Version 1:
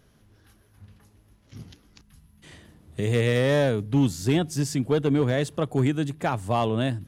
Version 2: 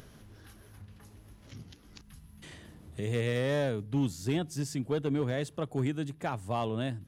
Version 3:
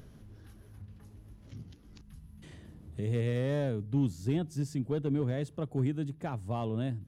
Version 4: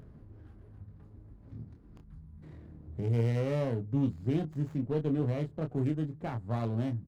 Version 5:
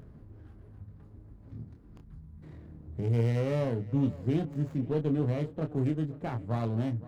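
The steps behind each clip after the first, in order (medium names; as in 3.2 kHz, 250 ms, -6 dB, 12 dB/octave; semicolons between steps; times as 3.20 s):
upward compressor, threshold -32 dBFS; trim -8 dB
bass shelf 480 Hz +10.5 dB; trim -8 dB
local Wiener filter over 15 samples; doubling 26 ms -6 dB; sliding maximum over 9 samples
tape echo 520 ms, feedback 55%, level -17 dB, low-pass 3.2 kHz; trim +1.5 dB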